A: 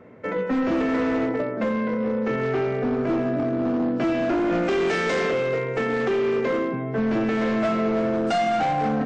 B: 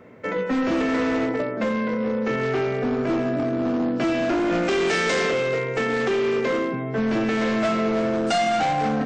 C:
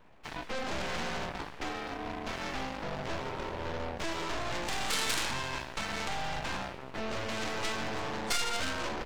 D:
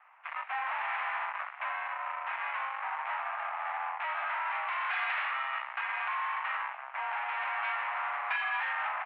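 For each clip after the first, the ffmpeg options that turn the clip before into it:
ffmpeg -i in.wav -af "highshelf=frequency=3000:gain=9.5" out.wav
ffmpeg -i in.wav -af "aeval=exprs='abs(val(0))':channel_layout=same,aeval=exprs='0.211*(cos(1*acos(clip(val(0)/0.211,-1,1)))-cos(1*PI/2))+0.0944*(cos(3*acos(clip(val(0)/0.211,-1,1)))-cos(3*PI/2))+0.00596*(cos(4*acos(clip(val(0)/0.211,-1,1)))-cos(4*PI/2))+0.0106*(cos(6*acos(clip(val(0)/0.211,-1,1)))-cos(6*PI/2))':channel_layout=same" out.wav
ffmpeg -i in.wav -af "highpass=frequency=490:width_type=q:width=0.5412,highpass=frequency=490:width_type=q:width=1.307,lowpass=frequency=2200:width_type=q:width=0.5176,lowpass=frequency=2200:width_type=q:width=0.7071,lowpass=frequency=2200:width_type=q:width=1.932,afreqshift=280,volume=4.5dB" out.wav

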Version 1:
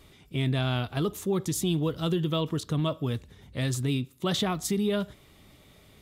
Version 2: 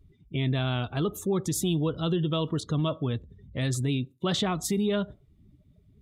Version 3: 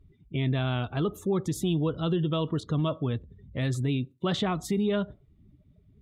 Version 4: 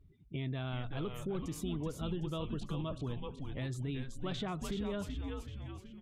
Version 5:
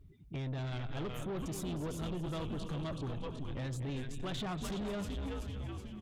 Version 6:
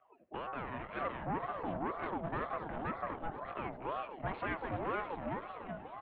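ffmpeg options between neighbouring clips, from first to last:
ffmpeg -i in.wav -filter_complex "[0:a]afftdn=noise_reduction=28:noise_floor=-46,asplit=2[link_01][link_02];[link_02]alimiter=level_in=1dB:limit=-24dB:level=0:latency=1:release=81,volume=-1dB,volume=-1dB[link_03];[link_01][link_03]amix=inputs=2:normalize=0,volume=-3dB" out.wav
ffmpeg -i in.wav -af "bass=frequency=250:gain=0,treble=frequency=4000:gain=-9" out.wav
ffmpeg -i in.wav -filter_complex "[0:a]asplit=6[link_01][link_02][link_03][link_04][link_05][link_06];[link_02]adelay=378,afreqshift=-140,volume=-5dB[link_07];[link_03]adelay=756,afreqshift=-280,volume=-12.7dB[link_08];[link_04]adelay=1134,afreqshift=-420,volume=-20.5dB[link_09];[link_05]adelay=1512,afreqshift=-560,volume=-28.2dB[link_10];[link_06]adelay=1890,afreqshift=-700,volume=-36dB[link_11];[link_01][link_07][link_08][link_09][link_10][link_11]amix=inputs=6:normalize=0,acompressor=threshold=-34dB:ratio=2,volume=-5dB" out.wav
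ffmpeg -i in.wav -filter_complex "[0:a]asplit=2[link_01][link_02];[link_02]aecho=0:1:236|472|708|944:0.251|0.105|0.0443|0.0186[link_03];[link_01][link_03]amix=inputs=2:normalize=0,asoftclip=type=tanh:threshold=-39dB,volume=4.5dB" out.wav
ffmpeg -i in.wav -af "highpass=frequency=240:width_type=q:width=0.5412,highpass=frequency=240:width_type=q:width=1.307,lowpass=frequency=2200:width_type=q:width=0.5176,lowpass=frequency=2200:width_type=q:width=0.7071,lowpass=frequency=2200:width_type=q:width=1.932,afreqshift=-89,aeval=exprs='val(0)*sin(2*PI*680*n/s+680*0.4/2*sin(2*PI*2*n/s))':channel_layout=same,volume=7dB" out.wav

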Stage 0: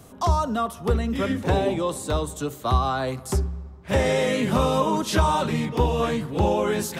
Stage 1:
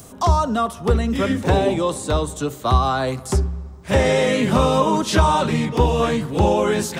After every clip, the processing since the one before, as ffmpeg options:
ffmpeg -i in.wav -filter_complex "[0:a]equalizer=frequency=12000:width_type=o:width=0.23:gain=-11,acrossover=split=5600[link_01][link_02];[link_02]acompressor=mode=upward:threshold=-44dB:ratio=2.5[link_03];[link_01][link_03]amix=inputs=2:normalize=0,volume=4.5dB" out.wav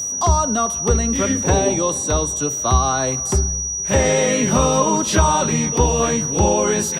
ffmpeg -i in.wav -filter_complex "[0:a]asplit=2[link_01][link_02];[link_02]adelay=472.3,volume=-27dB,highshelf=frequency=4000:gain=-10.6[link_03];[link_01][link_03]amix=inputs=2:normalize=0,aeval=exprs='val(0)+0.0794*sin(2*PI*5800*n/s)':channel_layout=same" out.wav

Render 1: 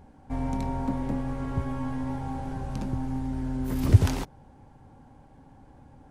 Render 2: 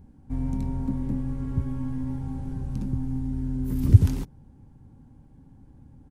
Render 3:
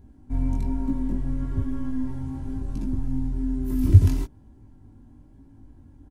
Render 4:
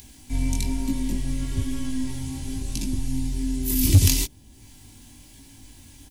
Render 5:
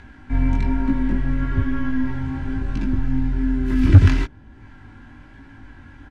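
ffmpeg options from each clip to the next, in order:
ffmpeg -i in.wav -af "firequalizer=gain_entry='entry(190,0);entry(660,-17);entry(940,-14);entry(12000,-5)':delay=0.05:min_phase=1,volume=3dB" out.wav
ffmpeg -i in.wav -af "aecho=1:1:3:0.56,flanger=delay=18:depth=4:speed=1.1,volume=3.5dB" out.wav
ffmpeg -i in.wav -filter_complex "[0:a]acrossover=split=760[link_01][link_02];[link_02]acompressor=mode=upward:threshold=-57dB:ratio=2.5[link_03];[link_01][link_03]amix=inputs=2:normalize=0,aexciter=amount=9:drive=6.2:freq=2100,volume=8dB,asoftclip=hard,volume=-8dB" out.wav
ffmpeg -i in.wav -af "lowpass=frequency=1500:width_type=q:width=6.1,volume=5.5dB" out.wav

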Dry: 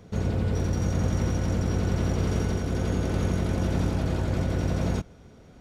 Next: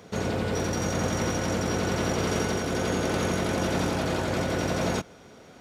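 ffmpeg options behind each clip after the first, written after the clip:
ffmpeg -i in.wav -af "highpass=frequency=520:poles=1,volume=8dB" out.wav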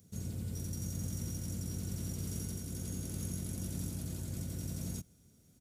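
ffmpeg -i in.wav -af "firequalizer=gain_entry='entry(100,0);entry(440,-20);entry(830,-26);entry(7500,1);entry(11000,8)':delay=0.05:min_phase=1,volume=-6dB" out.wav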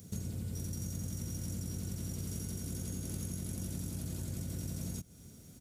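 ffmpeg -i in.wav -af "acompressor=threshold=-47dB:ratio=6,volume=10.5dB" out.wav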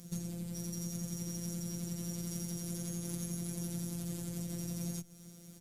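ffmpeg -i in.wav -af "afftfilt=real='hypot(re,im)*cos(PI*b)':imag='0':win_size=1024:overlap=0.75,volume=4.5dB" -ar 48000 -c:a libopus -b:a 256k out.opus

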